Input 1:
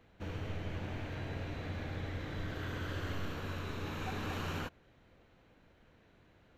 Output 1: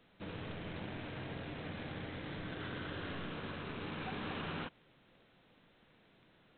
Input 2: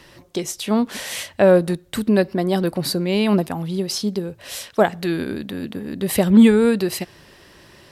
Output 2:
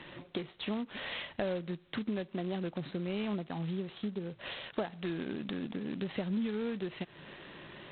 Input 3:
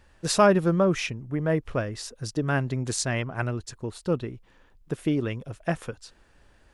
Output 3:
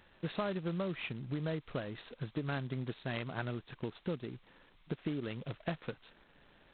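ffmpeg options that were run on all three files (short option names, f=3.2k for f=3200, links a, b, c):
-af "lowshelf=f=110:t=q:w=1.5:g=-8,acompressor=threshold=-33dB:ratio=5,volume=-2dB" -ar 8000 -c:a adpcm_g726 -b:a 16k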